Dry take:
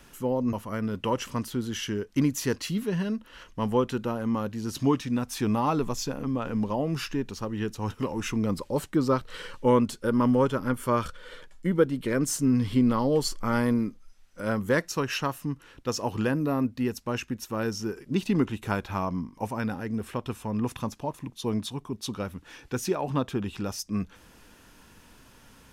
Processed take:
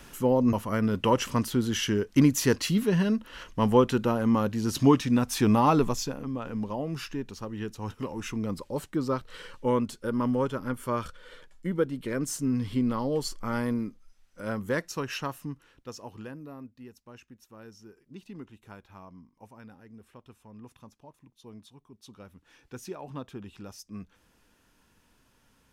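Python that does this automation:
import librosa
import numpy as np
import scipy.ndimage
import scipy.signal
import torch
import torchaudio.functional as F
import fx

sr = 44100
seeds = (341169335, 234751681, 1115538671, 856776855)

y = fx.gain(x, sr, db=fx.line((5.81, 4.0), (6.24, -4.5), (15.42, -4.5), (15.9, -12.0), (16.76, -19.0), (21.86, -19.0), (22.61, -11.5)))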